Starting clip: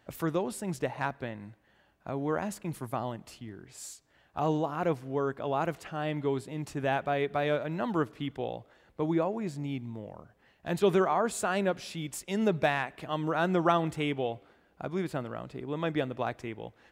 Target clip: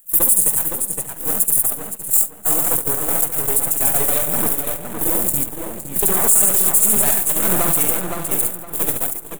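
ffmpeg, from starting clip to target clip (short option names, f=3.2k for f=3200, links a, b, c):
-filter_complex "[0:a]aeval=exprs='val(0)+0.5*0.015*sgn(val(0))':c=same,highshelf=f=3k:g=9.5,acompressor=threshold=-31dB:ratio=1.5,asplit=2[a][b];[b]aecho=0:1:120|264|436.8|644.2|893:0.631|0.398|0.251|0.158|0.1[c];[a][c]amix=inputs=2:normalize=0,atempo=1.8,agate=range=-37dB:threshold=-29dB:ratio=16:detection=peak,equalizer=f=5.9k:t=o:w=0.43:g=-6.5,aeval=exprs='max(val(0),0)':c=same,aexciter=amount=7.7:drive=9.8:freq=7.4k,asplit=2[d][e];[e]adelay=514,lowpass=f=4.2k:p=1,volume=-6dB,asplit=2[f][g];[g]adelay=514,lowpass=f=4.2k:p=1,volume=0.28,asplit=2[h][i];[i]adelay=514,lowpass=f=4.2k:p=1,volume=0.28,asplit=2[j][k];[k]adelay=514,lowpass=f=4.2k:p=1,volume=0.28[l];[f][h][j][l]amix=inputs=4:normalize=0[m];[d][m]amix=inputs=2:normalize=0,alimiter=level_in=11.5dB:limit=-1dB:release=50:level=0:latency=1,volume=-1dB"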